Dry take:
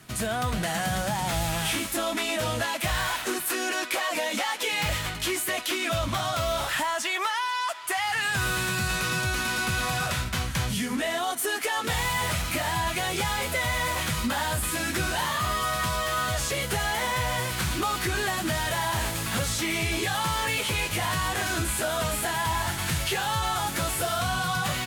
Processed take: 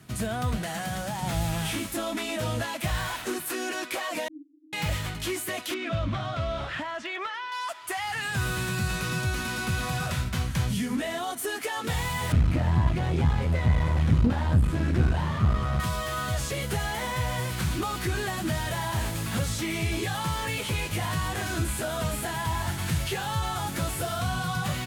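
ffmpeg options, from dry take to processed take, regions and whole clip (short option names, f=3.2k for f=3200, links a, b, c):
-filter_complex "[0:a]asettb=1/sr,asplit=3[a][b][c];[a]atrim=end=0.564[d];[b]atrim=start=0.56:end=1.23,asetpts=PTS-STARTPTS,afade=t=in:d=0.004:c=qsin,afade=t=out:st=0.666:d=0.004:c=qsin,lowshelf=f=260:g=-7.5,aeval=exprs='clip(val(0),-1,0.0562)':c=same[e];[c]atrim=start=1.226[f];[d][e]acrossfade=d=0.004:c1=hsin:c2=qsin[g];[g][f]acrossfade=d=0.004:c1=qsin:c2=hsin,asettb=1/sr,asplit=3[h][i][j];[h]atrim=end=4.284[k];[i]atrim=start=4.28:end=4.73,asetpts=PTS-STARTPTS,afade=t=in:d=0.004:c=qsin,afade=t=out:st=0.446:d=0.004:c=qsin,aeval=exprs='max(val(0),0)':c=same,asuperpass=centerf=300:order=12:qfactor=5[l];[j]atrim=start=4.726[m];[k][l]acrossfade=d=0.004:c1=hsin:c2=qsin[n];[n][m]acrossfade=d=0.004:c1=qsin:c2=hsin,asettb=1/sr,asplit=3[o][p][q];[o]atrim=end=5.744[r];[p]atrim=start=5.74:end=7.52,asetpts=PTS-STARTPTS,afade=t=in:d=0.004:c=qsin,afade=t=out:st=1.776:d=0.004:c=qsin,lowpass=3.2k,volume=20dB,asoftclip=hard,volume=-20dB,equalizer=f=900:w=4:g=-6[s];[q]atrim=start=7.516[t];[r][s]acrossfade=d=0.004:c1=hsin:c2=qsin[u];[u][t]acrossfade=d=0.004:c1=qsin:c2=hsin,asettb=1/sr,asplit=3[v][w][x];[v]atrim=end=12.324[y];[w]atrim=start=12.32:end=15.8,asetpts=PTS-STARTPTS,afade=t=in:d=0.004:c=qsin,afade=t=out:st=3.476:d=0.004:c=qsin,highpass=54,aemphasis=mode=reproduction:type=riaa,aeval=exprs='clip(val(0),-1,0.0355)':c=same[z];[x]atrim=start=15.796[aa];[y][z]acrossfade=d=0.004:c1=hsin:c2=qsin[ab];[ab][aa]acrossfade=d=0.004:c1=qsin:c2=hsin,highpass=54,lowshelf=f=350:g=9,volume=-5dB"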